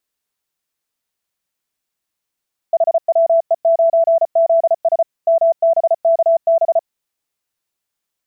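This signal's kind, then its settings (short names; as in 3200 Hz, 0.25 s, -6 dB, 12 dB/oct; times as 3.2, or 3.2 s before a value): Morse "HWE9ZS MBKB" 34 wpm 664 Hz -9 dBFS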